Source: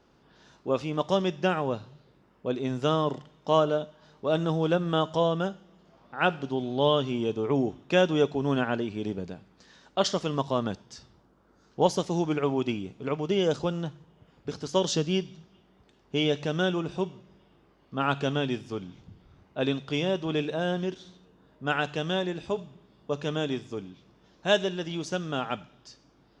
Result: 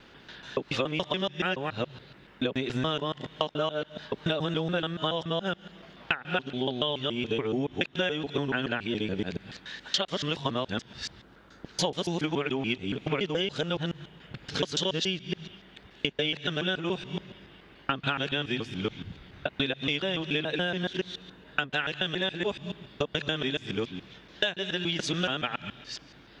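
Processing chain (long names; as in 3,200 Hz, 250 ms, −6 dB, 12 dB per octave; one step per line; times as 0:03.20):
reversed piece by piece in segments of 142 ms
flat-topped bell 2,500 Hz +10 dB
downward compressor 16 to 1, threshold −32 dBFS, peak gain reduction 20.5 dB
level +7 dB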